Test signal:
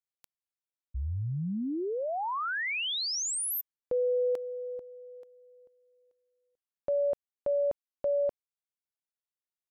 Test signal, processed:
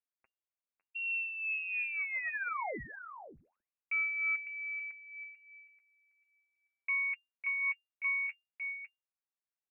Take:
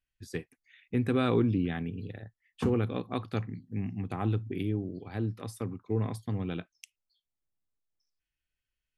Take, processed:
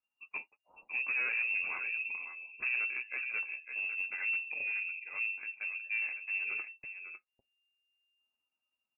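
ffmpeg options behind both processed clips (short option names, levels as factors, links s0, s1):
-filter_complex "[0:a]bandreject=f=1000:w=14,asplit=2[s0][s1];[s1]adelay=553.9,volume=0.355,highshelf=f=4000:g=-12.5[s2];[s0][s2]amix=inputs=2:normalize=0,flanger=delay=6.5:depth=4.8:regen=28:speed=0.42:shape=sinusoidal,asoftclip=type=tanh:threshold=0.0398,lowpass=f=2400:t=q:w=0.5098,lowpass=f=2400:t=q:w=0.6013,lowpass=f=2400:t=q:w=0.9,lowpass=f=2400:t=q:w=2.563,afreqshift=-2800"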